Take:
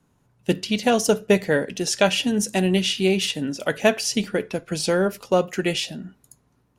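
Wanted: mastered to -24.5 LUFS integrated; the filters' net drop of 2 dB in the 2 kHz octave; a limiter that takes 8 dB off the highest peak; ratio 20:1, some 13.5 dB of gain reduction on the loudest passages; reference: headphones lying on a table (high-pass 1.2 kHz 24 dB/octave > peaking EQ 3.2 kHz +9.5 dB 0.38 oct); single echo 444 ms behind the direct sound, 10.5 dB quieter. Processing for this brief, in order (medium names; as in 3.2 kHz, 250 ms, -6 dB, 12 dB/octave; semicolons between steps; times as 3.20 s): peaking EQ 2 kHz -5 dB; compression 20:1, threshold -26 dBFS; peak limiter -22.5 dBFS; high-pass 1.2 kHz 24 dB/octave; peaking EQ 3.2 kHz +9.5 dB 0.38 oct; delay 444 ms -10.5 dB; trim +9 dB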